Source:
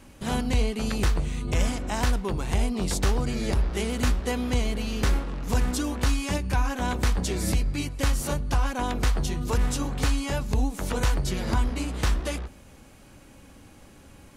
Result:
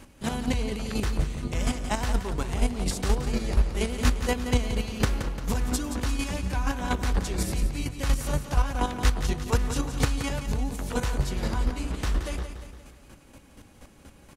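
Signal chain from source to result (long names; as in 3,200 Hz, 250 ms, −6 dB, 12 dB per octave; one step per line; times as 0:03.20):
square-wave tremolo 4.2 Hz, depth 60%, duty 20%
on a send: repeating echo 174 ms, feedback 50%, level −9.5 dB
on the sum: level +3 dB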